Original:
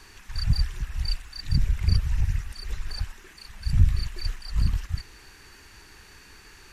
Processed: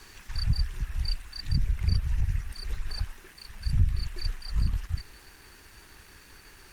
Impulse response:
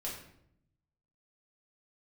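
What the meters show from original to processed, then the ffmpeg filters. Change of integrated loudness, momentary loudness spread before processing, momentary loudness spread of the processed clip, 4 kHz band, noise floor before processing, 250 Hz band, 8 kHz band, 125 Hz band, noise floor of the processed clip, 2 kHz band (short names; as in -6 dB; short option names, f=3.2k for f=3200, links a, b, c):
-3.5 dB, 22 LU, 22 LU, -2.5 dB, -51 dBFS, -3.5 dB, -3.5 dB, -3.5 dB, -53 dBFS, -3.0 dB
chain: -af "acompressor=threshold=-26dB:ratio=1.5,aeval=exprs='val(0)*gte(abs(val(0)),0.00266)':c=same" -ar 48000 -c:a libopus -b:a 48k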